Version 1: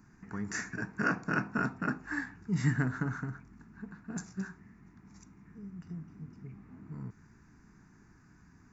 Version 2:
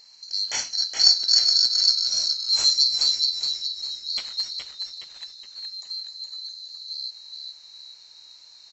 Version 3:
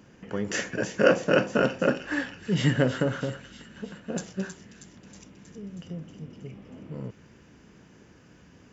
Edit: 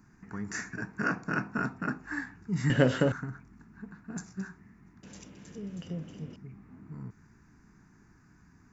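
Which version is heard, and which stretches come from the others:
1
2.7–3.12 from 3
5.03–6.36 from 3
not used: 2

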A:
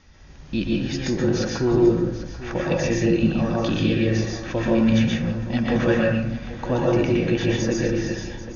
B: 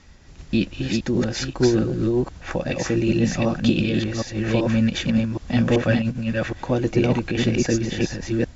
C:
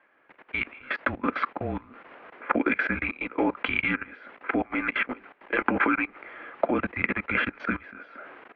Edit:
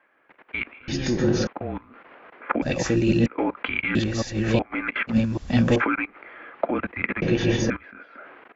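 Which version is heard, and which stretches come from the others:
C
0.88–1.47 from A
2.62–3.26 from B
3.95–4.59 from B
5.12–5.78 from B, crossfade 0.10 s
7.22–7.7 from A

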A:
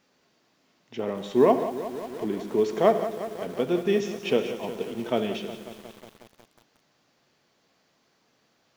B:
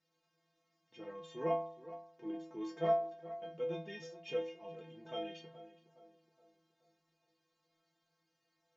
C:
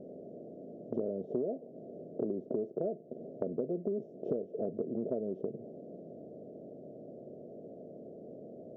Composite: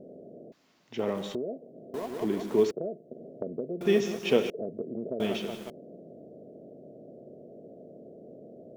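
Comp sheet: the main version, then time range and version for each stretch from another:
C
0.52–1.35 from A
1.94–2.71 from A
3.81–4.5 from A
5.2–5.7 from A
not used: B

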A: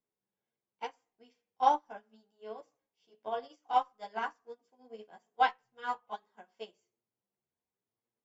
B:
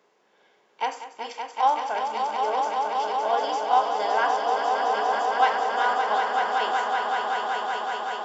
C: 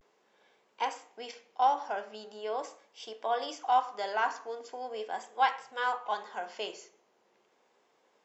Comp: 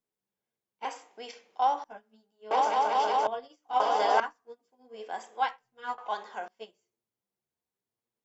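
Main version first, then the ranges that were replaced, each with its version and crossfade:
A
0.85–1.84 from C
2.51–3.27 from B
3.8–4.2 from B
4.99–5.48 from C, crossfade 0.24 s
5.98–6.48 from C

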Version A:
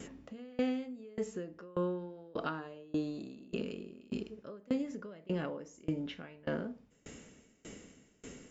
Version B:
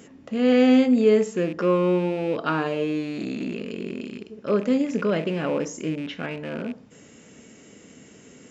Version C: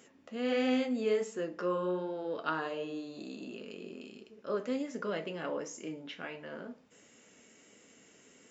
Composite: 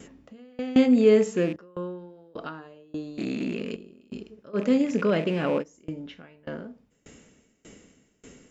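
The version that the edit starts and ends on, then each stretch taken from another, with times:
A
0.76–1.56 from B
3.18–3.76 from B
4.56–5.61 from B, crossfade 0.06 s
not used: C

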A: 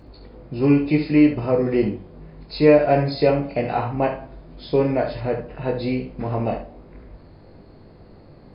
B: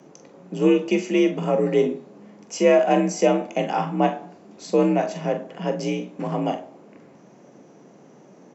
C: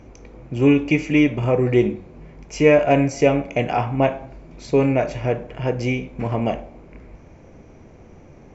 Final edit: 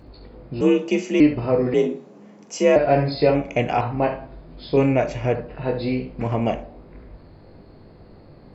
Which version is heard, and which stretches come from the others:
A
0.61–1.2 from B
1.74–2.76 from B
3.35–3.81 from C
4.77–5.35 from C
6.21–6.63 from C

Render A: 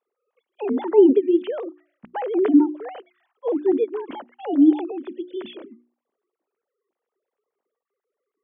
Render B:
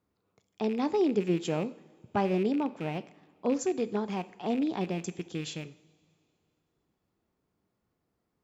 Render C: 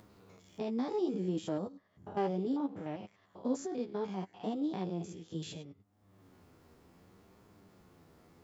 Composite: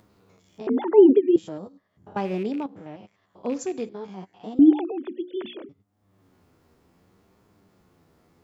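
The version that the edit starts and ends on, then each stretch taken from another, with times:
C
0.67–1.36 from A
2.16–2.66 from B
3.43–3.89 from B
4.59–5.69 from A

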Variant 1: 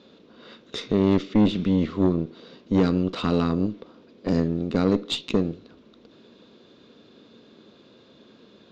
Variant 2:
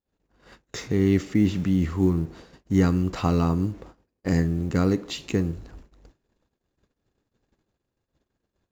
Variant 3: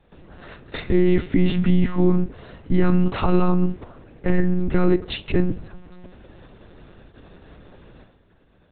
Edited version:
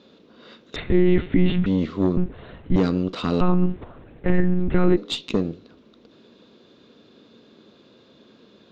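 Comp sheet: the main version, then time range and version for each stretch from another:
1
0.76–1.66 from 3
2.17–2.76 from 3
3.41–4.97 from 3
not used: 2

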